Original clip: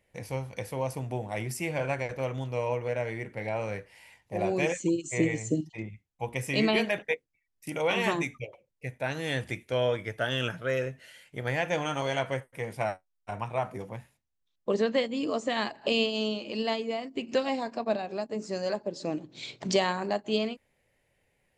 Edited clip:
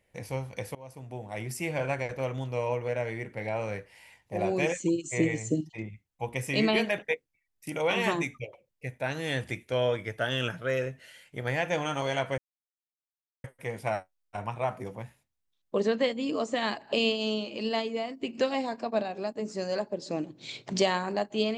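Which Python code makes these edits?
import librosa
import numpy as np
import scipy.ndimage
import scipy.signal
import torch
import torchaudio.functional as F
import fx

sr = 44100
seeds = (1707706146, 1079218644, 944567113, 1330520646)

y = fx.edit(x, sr, fx.fade_in_from(start_s=0.75, length_s=0.92, floor_db=-21.5),
    fx.insert_silence(at_s=12.38, length_s=1.06), tone=tone)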